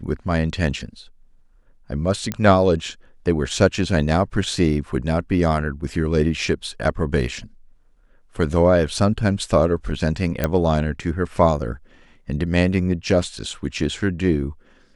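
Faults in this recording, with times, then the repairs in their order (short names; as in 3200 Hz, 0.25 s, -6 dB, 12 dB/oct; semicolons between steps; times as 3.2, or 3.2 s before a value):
2.32 pop -9 dBFS
10.44 pop -6 dBFS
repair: de-click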